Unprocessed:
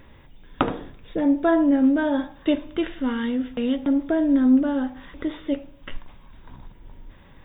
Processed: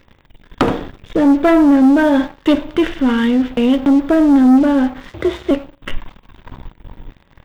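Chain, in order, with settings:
0:05.10–0:05.51: frequency shifter +49 Hz
leveller curve on the samples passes 3

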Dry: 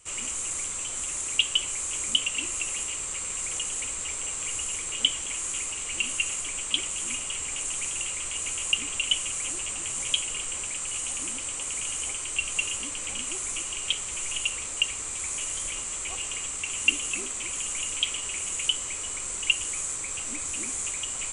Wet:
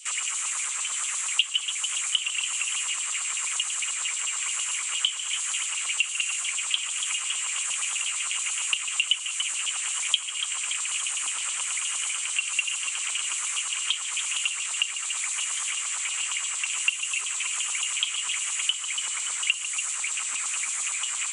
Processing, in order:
auto-filter high-pass saw down 8.7 Hz 970–4,100 Hz
echo with a time of its own for lows and highs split 2,800 Hz, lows 147 ms, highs 286 ms, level −11 dB
multiband upward and downward compressor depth 70%

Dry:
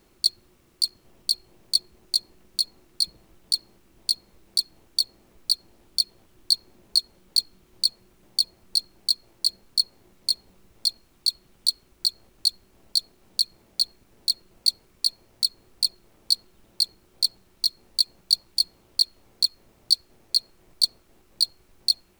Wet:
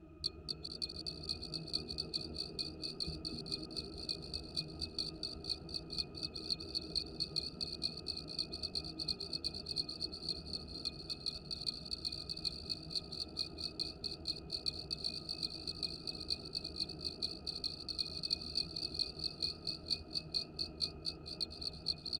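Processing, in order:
feedback delay that plays each chunk backwards 229 ms, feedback 70%, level −8.5 dB
resonances in every octave D#, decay 0.14 s
echo with shifted repeats 246 ms, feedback 36%, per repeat +80 Hz, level −3 dB
level +15.5 dB

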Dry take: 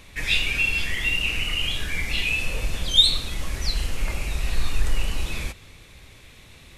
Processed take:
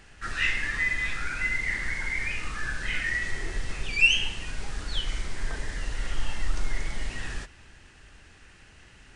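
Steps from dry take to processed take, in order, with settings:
wrong playback speed 45 rpm record played at 33 rpm
level −4.5 dB

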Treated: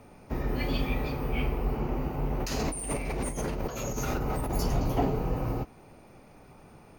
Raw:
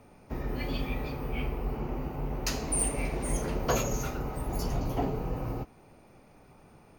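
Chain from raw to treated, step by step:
0:02.40–0:04.51: compressor whose output falls as the input rises −35 dBFS, ratio −1
level +3.5 dB

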